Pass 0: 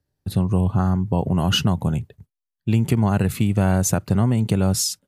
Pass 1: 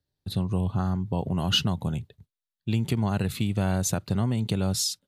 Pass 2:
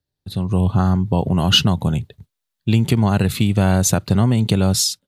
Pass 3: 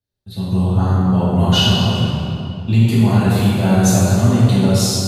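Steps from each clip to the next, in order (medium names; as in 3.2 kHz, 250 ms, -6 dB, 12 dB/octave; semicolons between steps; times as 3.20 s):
peaking EQ 3.8 kHz +10 dB 0.71 oct; trim -7 dB
level rider gain up to 11.5 dB
reverberation RT60 2.8 s, pre-delay 3 ms, DRR -11 dB; trim -9.5 dB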